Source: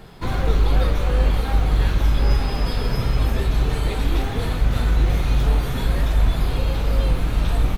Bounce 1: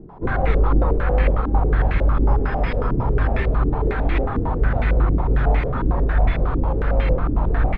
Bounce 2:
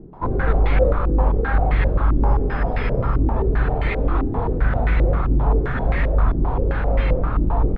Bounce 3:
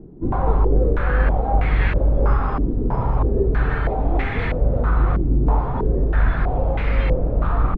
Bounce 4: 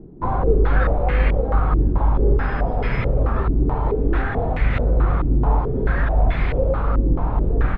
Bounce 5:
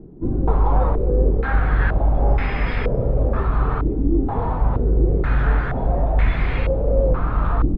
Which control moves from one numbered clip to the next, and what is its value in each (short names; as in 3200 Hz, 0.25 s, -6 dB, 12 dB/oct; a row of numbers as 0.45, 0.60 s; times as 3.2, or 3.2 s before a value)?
stepped low-pass, rate: 11, 7.6, 3.1, 4.6, 2.1 Hz